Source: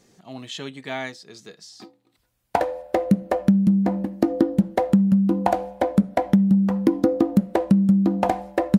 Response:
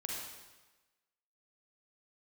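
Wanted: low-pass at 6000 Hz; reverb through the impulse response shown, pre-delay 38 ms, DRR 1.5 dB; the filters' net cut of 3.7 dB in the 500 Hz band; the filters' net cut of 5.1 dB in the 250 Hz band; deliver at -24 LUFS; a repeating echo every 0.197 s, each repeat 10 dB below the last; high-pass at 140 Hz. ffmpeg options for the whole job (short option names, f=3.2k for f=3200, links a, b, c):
-filter_complex "[0:a]highpass=140,lowpass=6k,equalizer=f=250:t=o:g=-5.5,equalizer=f=500:t=o:g=-3,aecho=1:1:197|394|591|788:0.316|0.101|0.0324|0.0104,asplit=2[a][b];[1:a]atrim=start_sample=2205,adelay=38[c];[b][c]afir=irnorm=-1:irlink=0,volume=-2.5dB[d];[a][d]amix=inputs=2:normalize=0"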